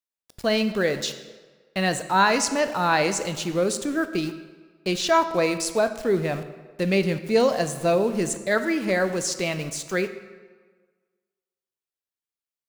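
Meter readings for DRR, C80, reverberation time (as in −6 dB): 9.5 dB, 13.0 dB, 1.5 s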